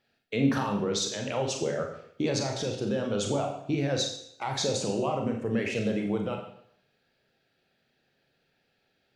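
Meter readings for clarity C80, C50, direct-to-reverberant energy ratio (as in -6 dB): 9.0 dB, 6.0 dB, 2.0 dB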